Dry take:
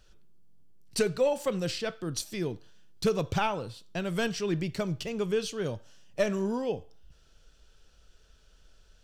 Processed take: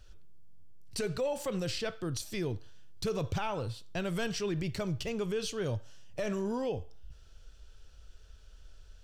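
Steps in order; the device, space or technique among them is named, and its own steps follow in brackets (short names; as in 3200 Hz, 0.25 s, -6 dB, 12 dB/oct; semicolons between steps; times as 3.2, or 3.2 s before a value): car stereo with a boomy subwoofer (resonant low shelf 130 Hz +6.5 dB, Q 1.5; limiter -25 dBFS, peak gain reduction 11.5 dB)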